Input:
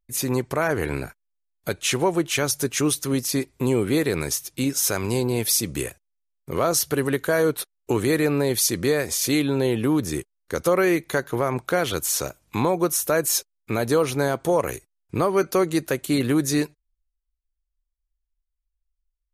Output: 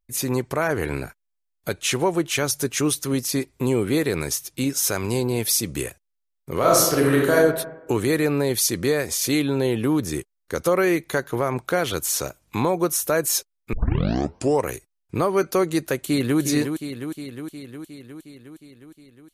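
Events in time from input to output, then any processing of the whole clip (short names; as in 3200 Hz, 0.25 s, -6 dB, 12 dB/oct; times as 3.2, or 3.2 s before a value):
6.58–7.34 reverb throw, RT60 1 s, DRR -3.5 dB
13.73 tape start 0.94 s
15.99–16.4 echo throw 0.36 s, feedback 70%, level -7 dB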